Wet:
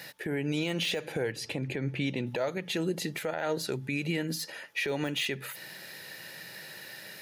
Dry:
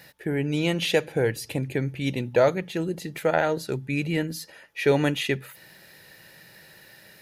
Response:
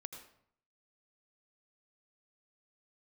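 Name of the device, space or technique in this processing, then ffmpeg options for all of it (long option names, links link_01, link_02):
broadcast voice chain: -filter_complex "[0:a]asettb=1/sr,asplit=3[link_01][link_02][link_03];[link_01]atrim=end=1.324[link_04];[link_02]atrim=start=1.32:end=2.27,asetpts=PTS-STARTPTS,afade=type=in:duration=0.004:curve=qsin,afade=type=out:start_time=0.946:duration=0.004:curve=qsin,aemphasis=mode=reproduction:type=50fm[link_05];[link_03]atrim=start=2.266[link_06];[link_04][link_05]acrossfade=duration=0.004:curve1=hsin:curve2=qsin[link_07];[link_07][link_06]acrossfade=duration=0.004:curve1=qsin:curve2=hsin,highpass=79,highpass=frequency=150:poles=1,deesser=0.75,acompressor=threshold=-27dB:ratio=4,equalizer=frequency=4400:width_type=o:width=2.6:gain=3,alimiter=level_in=1dB:limit=-24dB:level=0:latency=1:release=143,volume=-1dB,volume=4dB"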